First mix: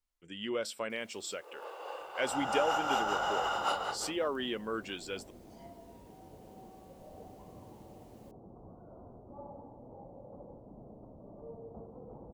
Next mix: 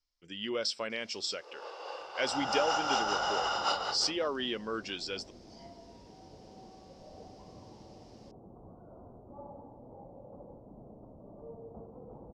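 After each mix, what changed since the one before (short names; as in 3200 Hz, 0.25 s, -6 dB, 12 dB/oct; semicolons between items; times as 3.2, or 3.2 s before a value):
master: add synth low-pass 5200 Hz, resonance Q 5.3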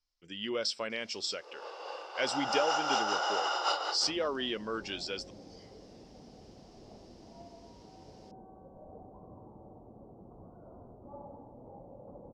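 second sound: entry +1.75 s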